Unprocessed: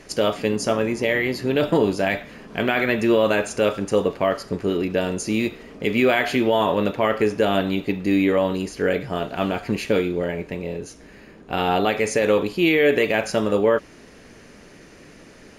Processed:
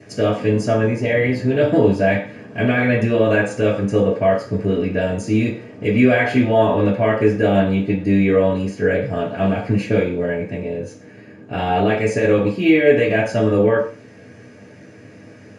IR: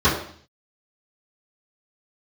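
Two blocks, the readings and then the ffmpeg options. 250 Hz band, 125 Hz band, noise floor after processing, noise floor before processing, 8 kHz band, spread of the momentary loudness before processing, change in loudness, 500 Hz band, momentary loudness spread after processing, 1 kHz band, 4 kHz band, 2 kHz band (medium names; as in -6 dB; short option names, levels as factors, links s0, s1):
+5.0 dB, +9.5 dB, -43 dBFS, -47 dBFS, no reading, 8 LU, +3.5 dB, +3.5 dB, 8 LU, +1.5 dB, -4.0 dB, +2.0 dB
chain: -filter_complex "[1:a]atrim=start_sample=2205,asetrate=66150,aresample=44100[s0];[0:a][s0]afir=irnorm=-1:irlink=0,volume=0.133"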